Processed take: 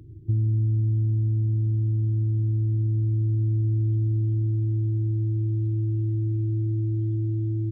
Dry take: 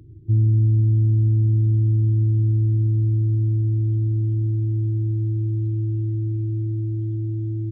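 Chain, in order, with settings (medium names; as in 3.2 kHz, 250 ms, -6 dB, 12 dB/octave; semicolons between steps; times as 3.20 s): compression, threshold -21 dBFS, peak gain reduction 6 dB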